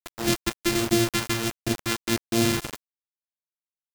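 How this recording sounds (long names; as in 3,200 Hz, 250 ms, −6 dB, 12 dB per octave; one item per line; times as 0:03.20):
a buzz of ramps at a fixed pitch in blocks of 128 samples
phaser sweep stages 2, 1.4 Hz, lowest notch 590–1,200 Hz
a quantiser's noise floor 6 bits, dither none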